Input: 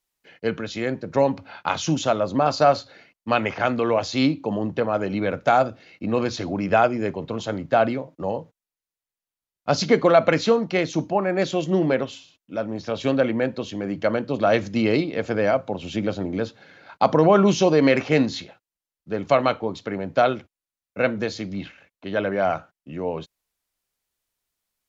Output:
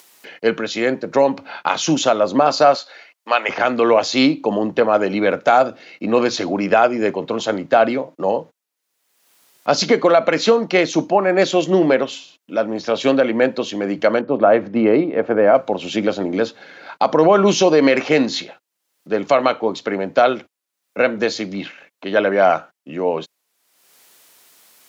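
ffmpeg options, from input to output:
ffmpeg -i in.wav -filter_complex "[0:a]asettb=1/sr,asplit=3[link_01][link_02][link_03];[link_01]atrim=end=2.754[link_04];[link_02]atrim=start=2.75:end=3.49,asetpts=PTS-STARTPTS,afade=type=in:duration=0.004:curve=qsin,afade=type=out:start_time=0.736:duration=0.004:curve=qsin,highpass=640[link_05];[link_03]atrim=start=3.486[link_06];[link_04][link_05]acrossfade=duration=0.004:curve1=hsin:curve2=qsin[link_07];[link_07][link_06]acrossfade=duration=0.004:curve1=qsin:curve2=hsin,asettb=1/sr,asplit=3[link_08][link_09][link_10];[link_08]atrim=end=14.214[link_11];[link_09]atrim=start=14.21:end=15.55,asetpts=PTS-STARTPTS,afade=type=in:duration=0.004:curve=qsin,afade=type=out:start_time=1.336:duration=0.004:curve=qsin,lowpass=1400[link_12];[link_10]atrim=start=15.546[link_13];[link_11][link_12]acrossfade=duration=0.004:curve1=hsin:curve2=qsin[link_14];[link_14][link_13]acrossfade=duration=0.004:curve1=qsin:curve2=hsin,alimiter=limit=-11dB:level=0:latency=1:release=196,acompressor=mode=upward:threshold=-41dB:ratio=2.5,highpass=260,volume=8.5dB" out.wav

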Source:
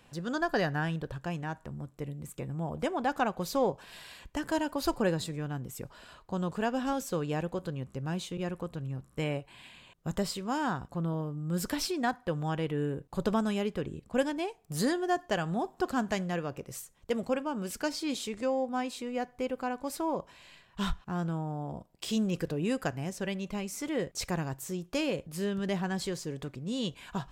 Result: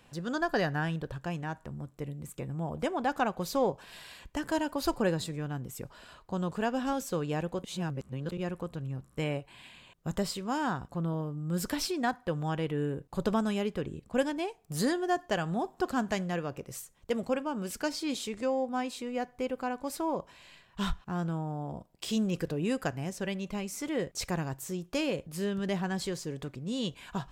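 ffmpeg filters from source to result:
ffmpeg -i in.wav -filter_complex "[0:a]asplit=3[link_01][link_02][link_03];[link_01]atrim=end=7.642[link_04];[link_02]atrim=start=7.638:end=8.322,asetpts=PTS-STARTPTS,areverse[link_05];[link_03]atrim=start=8.318[link_06];[link_04][link_05]acrossfade=duration=0.004:curve1=hsin:curve2=hsin[link_07];[link_07][link_06]acrossfade=duration=0.004:curve1=hsin:curve2=hsin" out.wav

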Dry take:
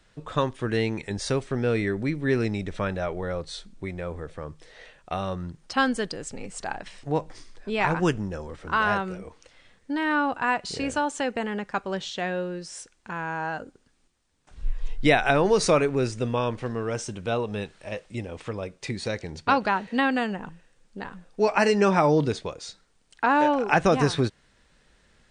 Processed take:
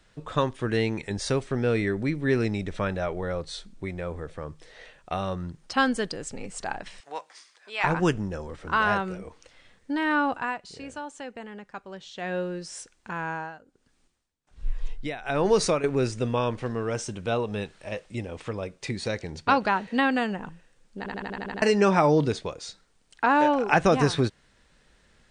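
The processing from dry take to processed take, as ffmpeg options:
ffmpeg -i in.wav -filter_complex "[0:a]asettb=1/sr,asplit=3[link_01][link_02][link_03];[link_01]atrim=end=7.004[link_04];[link_02]atrim=start=7:end=7.84,asetpts=PTS-STARTPTS,afade=type=in:duration=0.004:curve=qsin,afade=type=out:start_time=0.836:duration=0.004:curve=qsin,highpass=1000[link_05];[link_03]atrim=start=7.836[link_06];[link_04][link_05]acrossfade=duration=0.004:curve1=hsin:curve2=qsin[link_07];[link_07][link_06]acrossfade=duration=0.004:curve1=qsin:curve2=hsin,asettb=1/sr,asplit=3[link_08][link_09][link_10];[link_08]atrim=end=13.244[link_11];[link_09]atrim=start=13.24:end=15.84,asetpts=PTS-STARTPTS,afade=type=in:duration=0.004:curve=qsin,afade=type=out:start_time=2.596:duration=0.004:curve=qsin,tremolo=f=1.3:d=0.86[link_12];[link_10]atrim=start=15.836[link_13];[link_11][link_12]acrossfade=duration=0.004:curve1=hsin:curve2=qsin[link_14];[link_14][link_13]acrossfade=duration=0.004:curve1=qsin:curve2=hsin,asplit=11[link_15][link_16][link_17][link_18][link_19][link_20][link_21][link_22][link_23][link_24][link_25];[link_15]atrim=end=10.68,asetpts=PTS-STARTPTS,afade=type=out:start_time=10.34:duration=0.34:curve=qua:silence=0.281838[link_26];[link_16]atrim=start=10.68:end=12.01,asetpts=PTS-STARTPTS,volume=-11dB[link_27];[link_17]atrim=start=12.01:end=21.062,asetpts=PTS-STARTPTS,afade=type=in:duration=0.34:curve=qua:silence=0.281838[link_28];[link_18]atrim=start=20.978:end=21.062[link_29];[link_19]atrim=start=20.978:end=21.062[link_30];[link_20]atrim=start=20.978:end=21.062[link_31];[link_21]atrim=start=20.978:end=21.062[link_32];[link_22]atrim=start=20.978:end=21.062[link_33];[link_23]atrim=start=20.978:end=21.062[link_34];[link_24]atrim=start=20.978:end=21.062[link_35];[link_25]atrim=start=21.618[link_36];[link_26][link_27][link_28]concat=n=3:v=0:a=1[link_37];[link_37][link_29]acrossfade=duration=0.004:curve1=hsin:curve2=hsin[link_38];[link_38][link_30]acrossfade=duration=0.004:curve1=hsin:curve2=hsin[link_39];[link_39][link_31]acrossfade=duration=0.004:curve1=hsin:curve2=hsin[link_40];[link_40][link_32]acrossfade=duration=0.004:curve1=hsin:curve2=hsin[link_41];[link_41][link_33]acrossfade=duration=0.004:curve1=hsin:curve2=hsin[link_42];[link_42][link_34]acrossfade=duration=0.004:curve1=hsin:curve2=hsin[link_43];[link_43][link_35]acrossfade=duration=0.004:curve1=hsin:curve2=hsin[link_44];[link_44][link_36]acrossfade=duration=0.004:curve1=hsin:curve2=hsin" out.wav

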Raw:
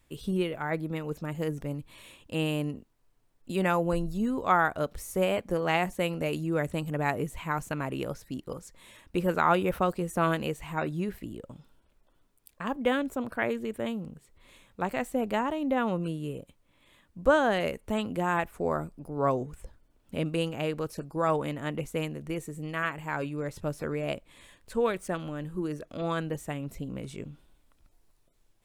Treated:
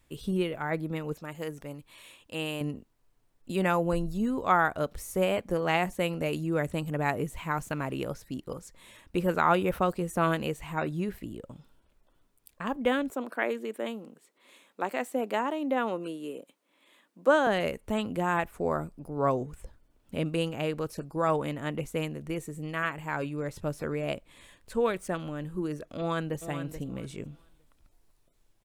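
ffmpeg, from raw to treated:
ffmpeg -i in.wav -filter_complex "[0:a]asettb=1/sr,asplit=3[link_01][link_02][link_03];[link_01]atrim=end=1.144[link_04];[link_02]atrim=start=1.14:end=2.61,asetpts=PTS-STARTPTS,afade=type=in:duration=0.004:curve=qsin,afade=type=out:start_time=1.466:duration=0.004:curve=qsin,lowshelf=frequency=360:gain=-10.5[link_05];[link_03]atrim=start=2.606[link_06];[link_04][link_05]acrossfade=duration=0.004:curve1=hsin:curve2=qsin[link_07];[link_07][link_06]acrossfade=duration=0.004:curve1=qsin:curve2=hsin,asettb=1/sr,asplit=3[link_08][link_09][link_10];[link_08]atrim=end=7.334[link_11];[link_09]atrim=start=7.33:end=7.95,asetpts=PTS-STARTPTS,afade=type=in:duration=0.004:curve=qsin,afade=type=out:start_time=0.616:duration=0.004:curve=qsin,aeval=exprs='val(0)*gte(abs(val(0)),0.00178)':channel_layout=same[link_12];[link_10]atrim=start=7.946[link_13];[link_11][link_12]acrossfade=duration=0.004:curve1=hsin:curve2=qsin[link_14];[link_14][link_13]acrossfade=duration=0.004:curve1=qsin:curve2=hsin,asettb=1/sr,asplit=3[link_15][link_16][link_17];[link_15]atrim=end=13.104[link_18];[link_16]atrim=start=13.1:end=17.47,asetpts=PTS-STARTPTS,afade=type=in:duration=0.004:curve=qsin,afade=type=out:start_time=4.366:duration=0.004:curve=qsin,highpass=frequency=250:width=0.5412,highpass=frequency=250:width=1.3066[link_19];[link_17]atrim=start=17.466[link_20];[link_18][link_19]acrossfade=duration=0.004:curve1=hsin:curve2=qsin[link_21];[link_21][link_20]acrossfade=duration=0.004:curve1=qsin:curve2=hsin,asplit=2[link_22][link_23];[link_23]afade=type=in:start_time=25.98:duration=0.01,afade=type=out:start_time=26.4:duration=0.01,aecho=0:1:430|860|1290:0.316228|0.0632456|0.0126491[link_24];[link_22][link_24]amix=inputs=2:normalize=0" out.wav

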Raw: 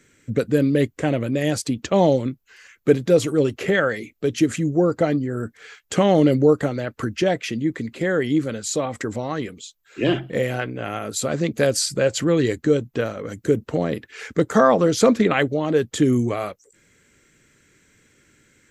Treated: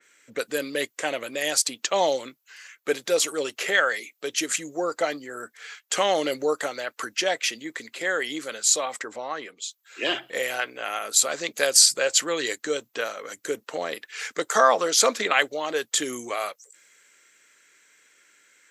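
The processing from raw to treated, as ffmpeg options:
ffmpeg -i in.wav -filter_complex "[0:a]asettb=1/sr,asplit=3[link_01][link_02][link_03];[link_01]atrim=end=8.994[link_04];[link_02]atrim=start=8.99:end=9.62,asetpts=PTS-STARTPTS,afade=type=in:duration=0.004:curve=qsin,afade=type=out:start_time=0.626:duration=0.004:curve=qsin,lowpass=frequency=1800:poles=1[link_05];[link_03]atrim=start=9.616[link_06];[link_04][link_05]acrossfade=duration=0.004:curve1=hsin:curve2=qsin[link_07];[link_07][link_06]acrossfade=duration=0.004:curve1=qsin:curve2=hsin,highpass=770,adynamicequalizer=threshold=0.00708:dfrequency=3300:dqfactor=0.7:tfrequency=3300:tqfactor=0.7:attack=5:release=100:ratio=0.375:range=3.5:mode=boostabove:tftype=highshelf,volume=1.5dB" out.wav

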